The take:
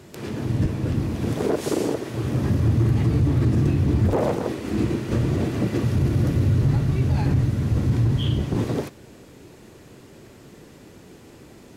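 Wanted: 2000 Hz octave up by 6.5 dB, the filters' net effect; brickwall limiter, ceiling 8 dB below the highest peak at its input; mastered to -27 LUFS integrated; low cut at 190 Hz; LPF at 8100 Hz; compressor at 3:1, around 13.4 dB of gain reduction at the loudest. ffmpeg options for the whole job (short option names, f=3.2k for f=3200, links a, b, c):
-af "highpass=190,lowpass=8.1k,equalizer=f=2k:t=o:g=8,acompressor=threshold=-38dB:ratio=3,volume=13dB,alimiter=limit=-16.5dB:level=0:latency=1"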